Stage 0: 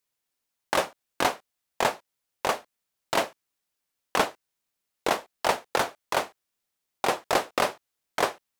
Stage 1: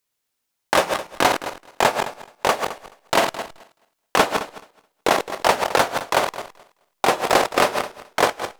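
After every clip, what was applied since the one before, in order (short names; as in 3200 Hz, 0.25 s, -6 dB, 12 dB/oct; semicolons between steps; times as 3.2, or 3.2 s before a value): regenerating reverse delay 0.107 s, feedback 41%, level -6 dB; in parallel at -8.5 dB: backlash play -32.5 dBFS; on the sum: gain +4 dB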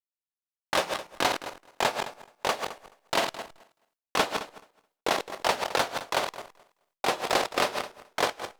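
gate with hold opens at -55 dBFS; dynamic EQ 4000 Hz, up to +5 dB, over -34 dBFS, Q 0.92; gain -9 dB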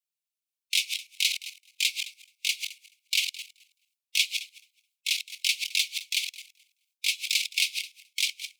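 Chebyshev high-pass 2200 Hz, order 8; harmonic-percussive split percussive +8 dB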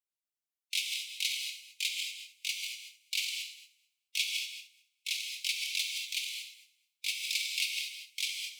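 non-linear reverb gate 0.26 s flat, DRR 2 dB; gain -8 dB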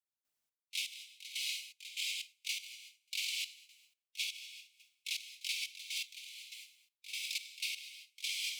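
reverse; compressor 6:1, threshold -42 dBFS, peak gain reduction 15 dB; reverse; step gate "..xx..x....xxx" 122 bpm -12 dB; gain +6.5 dB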